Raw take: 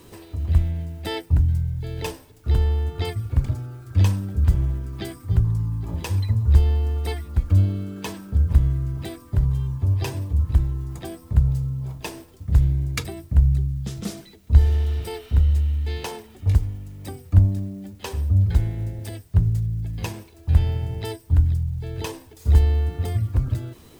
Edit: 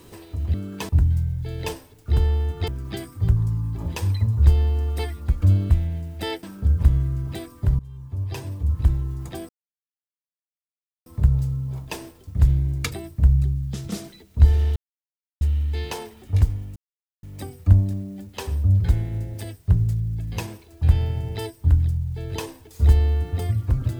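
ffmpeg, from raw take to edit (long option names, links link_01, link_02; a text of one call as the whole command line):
ffmpeg -i in.wav -filter_complex "[0:a]asplit=11[link_01][link_02][link_03][link_04][link_05][link_06][link_07][link_08][link_09][link_10][link_11];[link_01]atrim=end=0.542[link_12];[link_02]atrim=start=7.778:end=8.132[link_13];[link_03]atrim=start=1.268:end=3.062[link_14];[link_04]atrim=start=4.758:end=7.782[link_15];[link_05]atrim=start=0.538:end=1.272[link_16];[link_06]atrim=start=8.128:end=9.49,asetpts=PTS-STARTPTS,afade=type=out:start_time=1.358:duration=0.004:curve=hsin:silence=0.1[link_17];[link_07]atrim=start=9.49:end=11.19,asetpts=PTS-STARTPTS,afade=type=in:duration=1.1:silence=0.1,afade=type=out:start_time=1.696:duration=0.004:curve=hsin,apad=pad_dur=1.57[link_18];[link_08]atrim=start=11.19:end=14.89,asetpts=PTS-STARTPTS,afade=type=in:duration=0.004:curve=hsin,afade=type=out:start_time=3.696:duration=0.004:curve=hsin[link_19];[link_09]atrim=start=14.89:end=15.54,asetpts=PTS-STARTPTS,volume=0[link_20];[link_10]atrim=start=15.54:end=16.89,asetpts=PTS-STARTPTS,afade=type=in:duration=0.004:curve=hsin,afade=type=out:start_time=1.346:duration=0.004:curve=hsin,apad=pad_dur=0.47[link_21];[link_11]atrim=start=16.89,asetpts=PTS-STARTPTS,afade=type=in:duration=0.004:curve=hsin[link_22];[link_12][link_13]acrossfade=duration=0.004:curve1=hsin:curve2=hsin[link_23];[link_23][link_14]acrossfade=duration=0.004:curve1=hsin:curve2=hsin[link_24];[link_24][link_15]acrossfade=duration=0.004:curve1=hsin:curve2=hsin[link_25];[link_25][link_16]acrossfade=duration=0.004:curve1=hsin:curve2=hsin[link_26];[link_17][link_18][link_19][link_20][link_21][link_22]concat=n=6:v=0:a=1[link_27];[link_26][link_27]acrossfade=duration=0.004:curve1=hsin:curve2=hsin" out.wav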